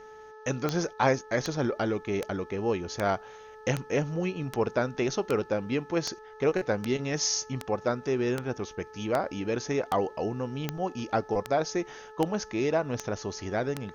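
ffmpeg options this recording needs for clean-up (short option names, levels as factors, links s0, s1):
-af "adeclick=t=4,bandreject=f=432.7:t=h:w=4,bandreject=f=865.4:t=h:w=4,bandreject=f=1298.1:t=h:w=4,bandreject=f=1730.8:t=h:w=4,agate=range=0.0891:threshold=0.01"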